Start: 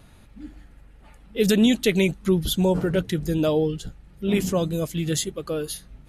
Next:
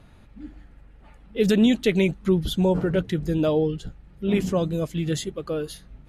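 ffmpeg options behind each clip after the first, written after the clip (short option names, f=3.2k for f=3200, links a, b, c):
-af "lowpass=f=3k:p=1"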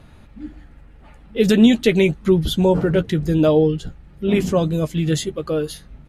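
-filter_complex "[0:a]asplit=2[a][b];[b]adelay=13,volume=-11.5dB[c];[a][c]amix=inputs=2:normalize=0,volume=5dB"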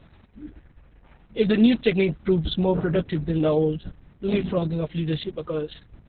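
-af "volume=-5dB" -ar 48000 -c:a libopus -b:a 6k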